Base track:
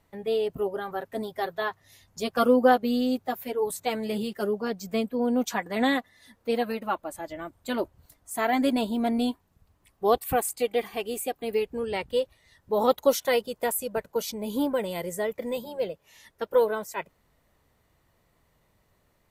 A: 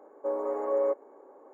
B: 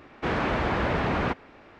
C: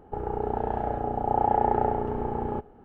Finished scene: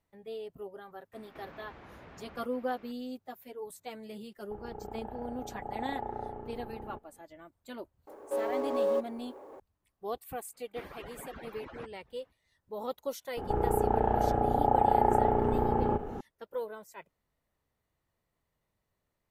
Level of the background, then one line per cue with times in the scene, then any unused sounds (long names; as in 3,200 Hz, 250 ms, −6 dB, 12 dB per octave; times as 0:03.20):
base track −14.5 dB
0:01.13: mix in B −7.5 dB + downward compressor 16 to 1, threshold −40 dBFS
0:04.38: mix in C −14.5 dB
0:08.07: mix in A −2.5 dB + mu-law and A-law mismatch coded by mu
0:10.53: mix in B −17 dB + harmonic-percussive split with one part muted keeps percussive
0:13.37: mix in C −2 dB + envelope flattener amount 50%